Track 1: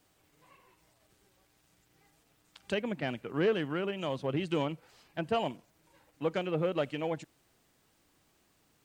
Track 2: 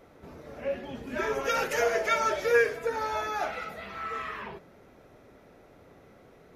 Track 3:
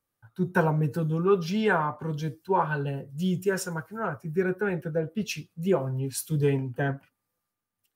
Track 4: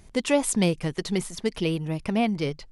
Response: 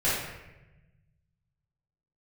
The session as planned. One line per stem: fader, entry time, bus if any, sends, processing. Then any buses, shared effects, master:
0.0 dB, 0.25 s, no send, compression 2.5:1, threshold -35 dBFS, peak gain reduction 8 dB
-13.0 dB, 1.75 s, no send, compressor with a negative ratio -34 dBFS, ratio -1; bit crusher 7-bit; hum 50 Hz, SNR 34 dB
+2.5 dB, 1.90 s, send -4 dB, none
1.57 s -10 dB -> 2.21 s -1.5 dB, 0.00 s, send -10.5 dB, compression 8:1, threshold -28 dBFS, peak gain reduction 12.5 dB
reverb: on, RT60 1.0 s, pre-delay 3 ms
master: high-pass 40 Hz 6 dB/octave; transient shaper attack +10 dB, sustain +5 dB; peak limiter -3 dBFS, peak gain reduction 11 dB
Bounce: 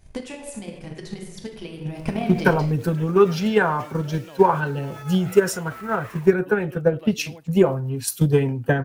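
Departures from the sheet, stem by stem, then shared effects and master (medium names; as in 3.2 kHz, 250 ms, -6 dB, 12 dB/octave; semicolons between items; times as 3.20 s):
stem 1 0.0 dB -> -11.0 dB; stem 3: send off; master: missing high-pass 40 Hz 6 dB/octave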